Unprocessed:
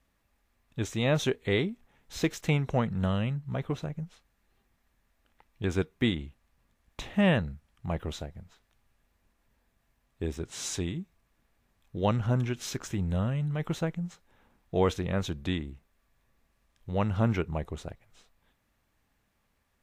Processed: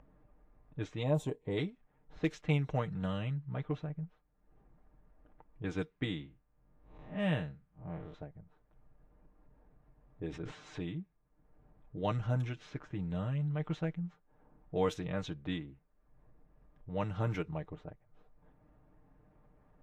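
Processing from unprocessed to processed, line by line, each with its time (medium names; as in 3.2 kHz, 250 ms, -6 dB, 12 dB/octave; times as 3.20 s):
1.03–1.57 s: time-frequency box 1.1–6.8 kHz -13 dB
6.04–8.14 s: spectral blur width 128 ms
10.29–10.78 s: decay stretcher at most 35 dB/s
whole clip: level-controlled noise filter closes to 760 Hz, open at -21.5 dBFS; comb 6.6 ms, depth 66%; upward compressor, threshold -39 dBFS; trim -8 dB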